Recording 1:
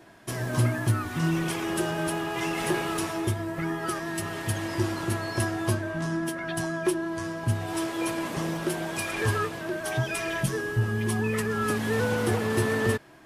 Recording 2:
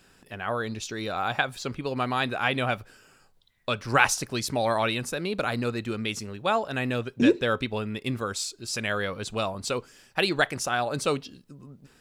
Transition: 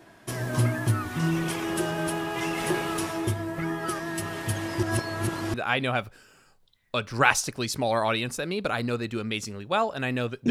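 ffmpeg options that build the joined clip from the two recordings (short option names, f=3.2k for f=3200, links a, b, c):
-filter_complex "[0:a]apad=whole_dur=10.5,atrim=end=10.5,asplit=2[a][b];[a]atrim=end=4.832[c];[b]atrim=start=4.828:end=5.542,asetpts=PTS-STARTPTS,areverse[d];[1:a]atrim=start=2.278:end=7.24[e];[c][d]acrossfade=d=0.004:c1=hsin:c2=hsin[f];[f][e]acrossfade=d=0.004:c1=hsin:c2=hsin"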